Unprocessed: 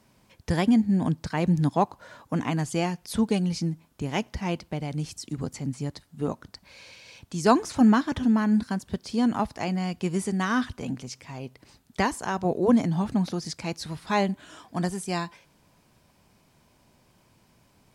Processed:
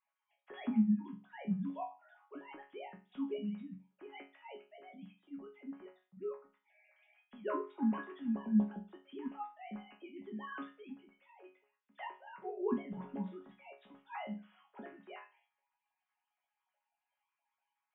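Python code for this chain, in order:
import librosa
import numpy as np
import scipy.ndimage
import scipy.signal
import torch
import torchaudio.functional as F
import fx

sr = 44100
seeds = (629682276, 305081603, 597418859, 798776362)

y = fx.sine_speech(x, sr)
y = fx.resonator_bank(y, sr, root=49, chord='sus4', decay_s=0.32)
y = y * 10.0 ** (2.0 / 20.0)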